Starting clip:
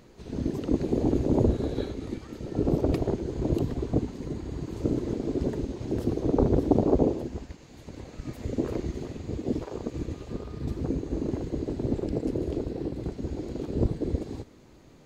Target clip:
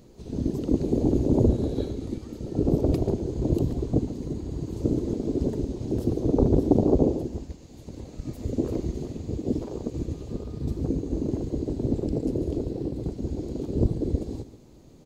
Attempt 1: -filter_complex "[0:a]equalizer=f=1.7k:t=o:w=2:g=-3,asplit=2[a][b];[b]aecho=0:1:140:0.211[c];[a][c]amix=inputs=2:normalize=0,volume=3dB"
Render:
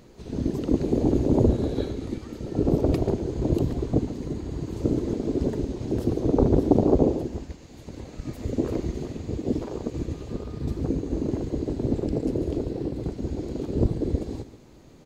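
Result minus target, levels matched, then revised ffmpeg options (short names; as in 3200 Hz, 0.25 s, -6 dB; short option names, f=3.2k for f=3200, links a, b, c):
2000 Hz band +7.0 dB
-filter_complex "[0:a]equalizer=f=1.7k:t=o:w=2:g=-11.5,asplit=2[a][b];[b]aecho=0:1:140:0.211[c];[a][c]amix=inputs=2:normalize=0,volume=3dB"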